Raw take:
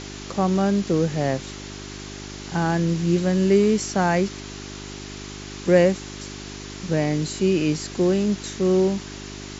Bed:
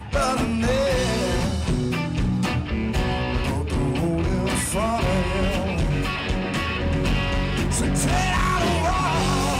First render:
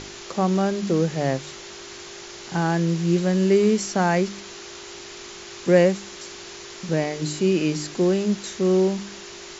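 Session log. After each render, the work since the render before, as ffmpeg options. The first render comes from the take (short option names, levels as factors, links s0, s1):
-af "bandreject=f=50:t=h:w=4,bandreject=f=100:t=h:w=4,bandreject=f=150:t=h:w=4,bandreject=f=200:t=h:w=4,bandreject=f=250:t=h:w=4,bandreject=f=300:t=h:w=4"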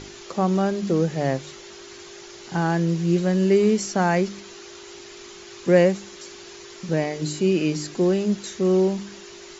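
-af "afftdn=nr=6:nf=-40"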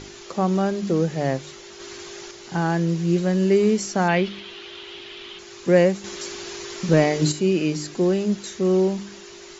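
-filter_complex "[0:a]asettb=1/sr,asplit=3[s0][s1][s2];[s0]atrim=end=4.084[s3];[s1]atrim=start=4.08:end=5.39,asetpts=PTS-STARTPTS,afade=t=in:d=0.004:c=qsin,afade=t=out:st=1.306:d=0.004:c=qsin,lowpass=f=3200:t=q:w=3.8[s4];[s2]atrim=start=5.386[s5];[s3][s4]acrossfade=d=0.004:c1=hsin:c2=qsin[s6];[s6][s5]acrossfade=d=0.004:c1=qsin:c2=hsin,asettb=1/sr,asplit=3[s7][s8][s9];[s7]atrim=end=6.044[s10];[s8]atrim=start=6.04:end=7.32,asetpts=PTS-STARTPTS,afade=t=in:d=0.004:c=qsin,afade=t=out:st=1.276:d=0.004:c=qsin,acontrast=85[s11];[s9]atrim=start=7.316[s12];[s10][s11]acrossfade=d=0.004:c1=hsin:c2=qsin[s13];[s13][s12]acrossfade=d=0.004:c1=qsin:c2=hsin,asplit=3[s14][s15][s16];[s14]atrim=end=1.802[s17];[s15]atrim=start=1.798:end=2.312,asetpts=PTS-STARTPTS,volume=1.58[s18];[s16]atrim=start=2.308[s19];[s17][s18]acrossfade=d=0.004:c1=hsin:c2=hsin[s20];[s20][s19]acrossfade=d=0.004:c1=hsin:c2=hsin"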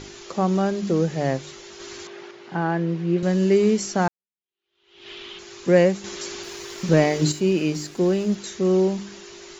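-filter_complex "[0:a]asettb=1/sr,asplit=3[s0][s1][s2];[s0]atrim=end=2.074[s3];[s1]atrim=start=2.07:end=3.23,asetpts=PTS-STARTPTS,afade=t=in:d=0.004:c=qsin,afade=t=out:st=1.156:d=0.004:c=qsin,highpass=170,lowpass=2600[s4];[s2]atrim=start=3.226[s5];[s3][s4]acrossfade=d=0.004:c1=hsin:c2=qsin[s6];[s6][s5]acrossfade=d=0.004:c1=qsin:c2=hsin,asettb=1/sr,asplit=3[s7][s8][s9];[s7]atrim=end=6.434[s10];[s8]atrim=start=6.43:end=8.35,asetpts=PTS-STARTPTS,afade=t=in:d=0.004:c=qsin,afade=t=out:st=1.916:d=0.004:c=qsin,aeval=exprs='sgn(val(0))*max(abs(val(0))-0.00422,0)':c=same[s11];[s9]atrim=start=8.346[s12];[s10][s11]acrossfade=d=0.004:c1=hsin:c2=qsin[s13];[s13][s12]acrossfade=d=0.004:c1=qsin:c2=hsin,asplit=2[s14][s15];[s14]atrim=end=4.08,asetpts=PTS-STARTPTS,afade=t=out:st=4.076:d=0.004:c=hsin[s16];[s15]atrim=start=4.08,asetpts=PTS-STARTPTS,afade=t=in:d=1.01:c=exp[s17];[s16][s17]concat=n=2:v=0:a=1"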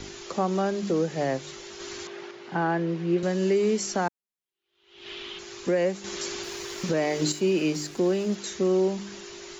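-filter_complex "[0:a]acrossover=split=230|500|3100[s0][s1][s2][s3];[s0]acompressor=threshold=0.0178:ratio=6[s4];[s4][s1][s2][s3]amix=inputs=4:normalize=0,alimiter=limit=0.168:level=0:latency=1:release=299"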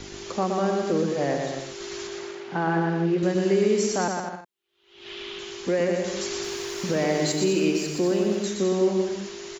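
-af "aecho=1:1:120|210|277.5|328.1|366.1:0.631|0.398|0.251|0.158|0.1"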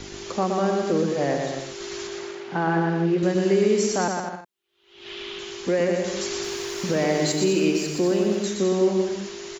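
-af "volume=1.19"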